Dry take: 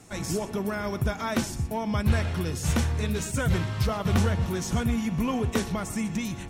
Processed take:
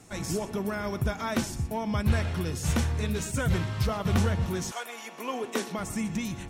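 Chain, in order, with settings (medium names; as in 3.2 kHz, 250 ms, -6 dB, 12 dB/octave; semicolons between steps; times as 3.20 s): 4.70–5.78 s: high-pass 630 Hz -> 200 Hz 24 dB/octave; trim -1.5 dB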